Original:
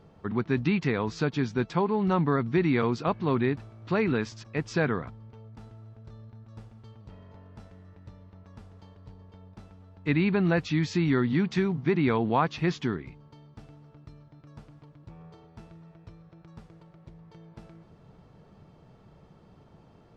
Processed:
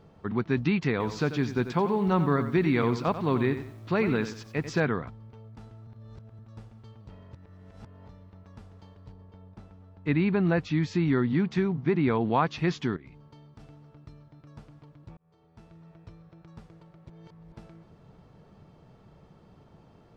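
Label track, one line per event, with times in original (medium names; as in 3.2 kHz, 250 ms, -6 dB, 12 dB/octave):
0.910000	4.800000	bit-crushed delay 91 ms, feedback 35%, word length 9-bit, level -11 dB
5.870000	6.390000	reverse
7.330000	8.090000	reverse
9.120000	12.210000	treble shelf 2.5 kHz -6.5 dB
12.960000	13.600000	compression 5:1, threshold -44 dBFS
15.170000	15.940000	fade in
17.100000	17.520000	reverse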